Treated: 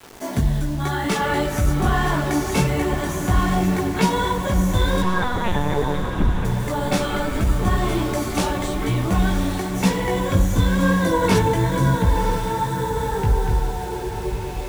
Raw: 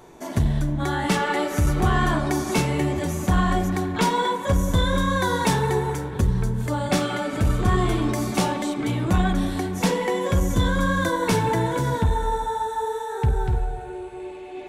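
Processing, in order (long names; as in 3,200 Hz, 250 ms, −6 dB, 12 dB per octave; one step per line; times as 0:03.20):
in parallel at −1.5 dB: downward compressor 6 to 1, threshold −28 dBFS, peak gain reduction 12.5 dB
on the sum: multi-voice chorus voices 4, 1 Hz, delay 18 ms, depth 3 ms
bit reduction 7 bits
0:05.02–0:06.45: linear-prediction vocoder at 8 kHz pitch kept
feedback delay with all-pass diffusion 1,013 ms, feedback 47%, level −8.5 dB
level +1.5 dB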